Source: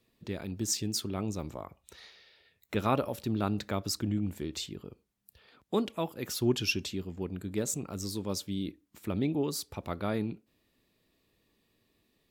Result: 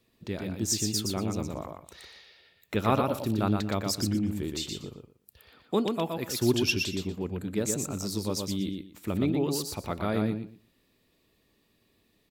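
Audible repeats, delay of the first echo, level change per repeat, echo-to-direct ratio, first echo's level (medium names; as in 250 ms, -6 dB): 3, 119 ms, -14.5 dB, -4.5 dB, -4.5 dB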